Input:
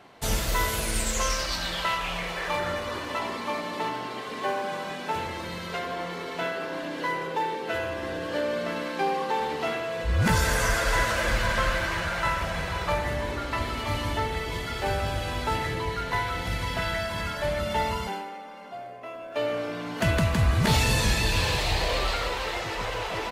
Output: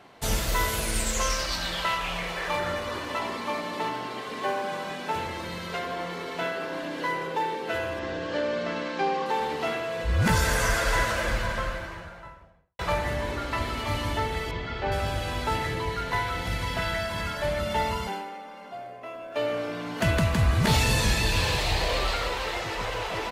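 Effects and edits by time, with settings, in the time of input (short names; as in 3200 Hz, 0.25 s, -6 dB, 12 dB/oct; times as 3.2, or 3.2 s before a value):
7.99–9.26 LPF 7000 Hz 24 dB/oct
10.84–12.79 studio fade out
14.51–14.92 air absorption 190 m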